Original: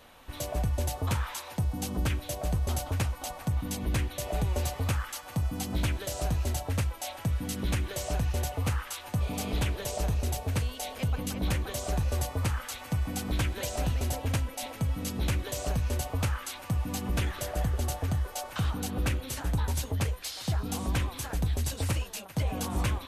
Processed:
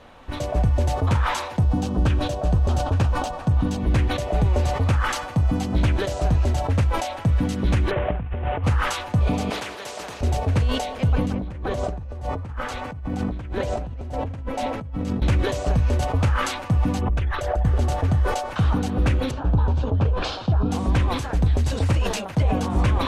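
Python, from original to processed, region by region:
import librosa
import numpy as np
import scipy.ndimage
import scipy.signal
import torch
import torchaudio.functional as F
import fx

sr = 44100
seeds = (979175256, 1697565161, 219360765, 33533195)

y = fx.chain(x, sr, fx.peak_eq(hz=2100.0, db=-9.0, octaves=0.22),
    fx.resample_bad(factor=2, down='filtered', up='hold'), at=(1.63, 3.8))
y = fx.chain(y, sr, fx.cvsd(bps=16000),
    fx.over_compress(threshold_db=-33.0, ratio=-0.5), at=(7.91, 8.64))
y = fx.chain(y, sr, fx.highpass(hz=550.0, slope=12),
    fx.spectral_comp(ratio=2.0), at=(9.5, 10.21))
y = fx.chain(y, sr, fx.high_shelf(hz=2100.0, db=-8.5),
    fx.over_compress(threshold_db=-38.0, ratio=-1.0), at=(11.26, 15.22))
y = fx.chain(y, sr, fx.envelope_sharpen(power=1.5),
    fx.peak_eq(hz=200.0, db=-14.5, octaves=1.6),
    fx.pre_swell(db_per_s=33.0), at=(16.99, 17.65))
y = fx.chain(y, sr, fx.lowpass(hz=2700.0, slope=12),
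    fx.peak_eq(hz=2000.0, db=-14.5, octaves=0.43), at=(19.31, 20.71))
y = scipy.signal.sosfilt(scipy.signal.butter(2, 7400.0, 'lowpass', fs=sr, output='sos'), y)
y = fx.high_shelf(y, sr, hz=2200.0, db=-10.0)
y = fx.sustainer(y, sr, db_per_s=53.0)
y = y * 10.0 ** (9.0 / 20.0)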